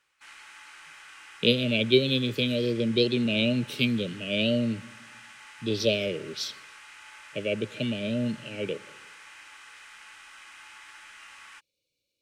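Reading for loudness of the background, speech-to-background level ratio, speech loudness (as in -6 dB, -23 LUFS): -46.5 LUFS, 19.5 dB, -27.0 LUFS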